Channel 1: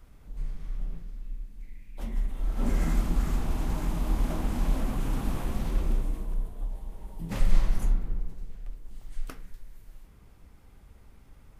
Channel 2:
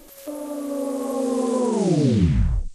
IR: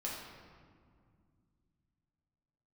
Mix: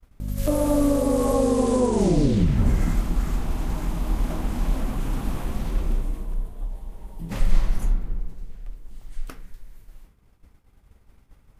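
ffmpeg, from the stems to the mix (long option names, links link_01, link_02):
-filter_complex "[0:a]agate=range=-33dB:threshold=-45dB:ratio=3:detection=peak,volume=2.5dB[link_01];[1:a]dynaudnorm=framelen=160:gausssize=3:maxgain=14dB,aeval=exprs='val(0)+0.0631*(sin(2*PI*50*n/s)+sin(2*PI*2*50*n/s)/2+sin(2*PI*3*50*n/s)/3+sin(2*PI*4*50*n/s)/4+sin(2*PI*5*50*n/s)/5)':channel_layout=same,acompressor=threshold=-16dB:ratio=3,adelay=200,volume=-4.5dB,asplit=2[link_02][link_03];[link_03]volume=-10dB[link_04];[2:a]atrim=start_sample=2205[link_05];[link_04][link_05]afir=irnorm=-1:irlink=0[link_06];[link_01][link_02][link_06]amix=inputs=3:normalize=0"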